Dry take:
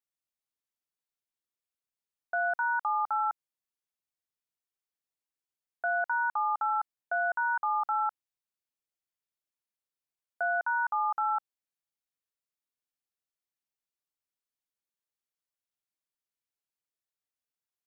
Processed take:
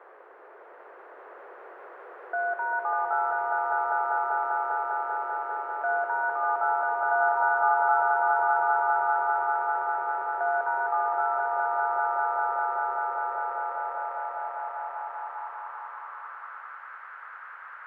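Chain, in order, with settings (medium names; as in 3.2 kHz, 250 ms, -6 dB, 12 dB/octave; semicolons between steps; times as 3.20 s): band noise 380–1600 Hz -52 dBFS; echo with a slow build-up 198 ms, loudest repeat 5, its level -4 dB; high-pass sweep 400 Hz -> 1.4 kHz, 13.07–16.89 s; trim -1.5 dB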